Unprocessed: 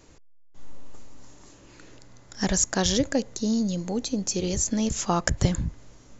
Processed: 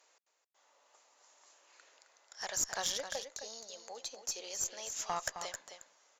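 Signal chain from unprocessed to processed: high-pass 600 Hz 24 dB/octave; valve stage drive 14 dB, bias 0.4; on a send: delay 264 ms -9 dB; on the sum: trim -7.5 dB

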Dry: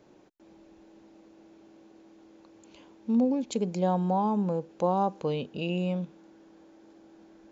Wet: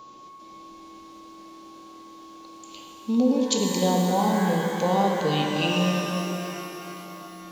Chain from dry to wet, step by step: resonant high shelf 2.5 kHz +10 dB, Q 1.5; whistle 1.1 kHz -45 dBFS; pitch-shifted reverb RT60 3.5 s, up +12 st, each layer -8 dB, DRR 0.5 dB; trim +2 dB

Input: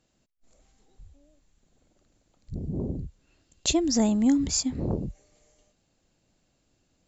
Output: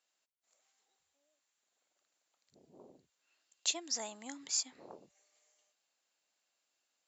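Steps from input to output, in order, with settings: high-pass 950 Hz 12 dB/octave; trim -6.5 dB

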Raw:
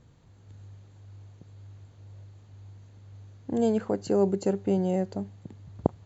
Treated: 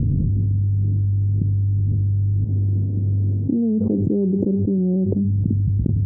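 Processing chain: 2.44–5.15 s: tilt EQ +4.5 dB/octave; inverse Chebyshev low-pass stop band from 1.7 kHz, stop band 80 dB; level flattener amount 100%; trim +4.5 dB

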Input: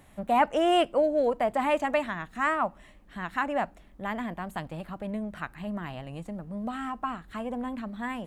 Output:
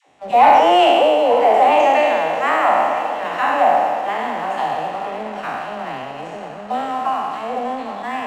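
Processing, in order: spectral sustain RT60 1.99 s; cabinet simulation 190–7400 Hz, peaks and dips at 190 Hz -8 dB, 440 Hz +5 dB, 770 Hz +10 dB, 1.6 kHz -3 dB, 2.7 kHz +4 dB, 5.7 kHz +5 dB; phase dispersion lows, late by 82 ms, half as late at 570 Hz; on a send: echo that smears into a reverb 986 ms, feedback 55%, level -13 dB; on the sum: waveshaping leveller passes 1

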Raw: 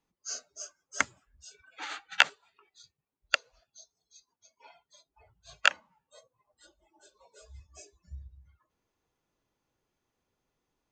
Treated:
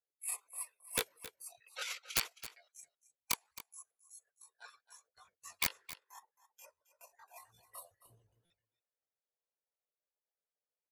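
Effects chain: gate with hold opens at -52 dBFS; dynamic bell 440 Hz, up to -5 dB, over -56 dBFS, Q 2; pitch shift +9 st; harmonic-percussive split harmonic -15 dB; in parallel at -1.5 dB: compression, threshold -42 dBFS, peak gain reduction 24 dB; on the sum: resonant low shelf 330 Hz -12.5 dB, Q 3; integer overflow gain 17.5 dB; on a send: delay 268 ms -15 dB; on the sum: buffer glitch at 8.45 s, samples 256, times 8; trim -2.5 dB

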